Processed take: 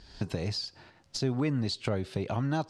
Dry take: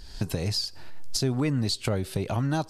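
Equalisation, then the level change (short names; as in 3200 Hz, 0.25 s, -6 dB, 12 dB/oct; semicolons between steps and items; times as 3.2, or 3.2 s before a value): HPF 97 Hz 6 dB/oct; air absorption 96 m; -2.0 dB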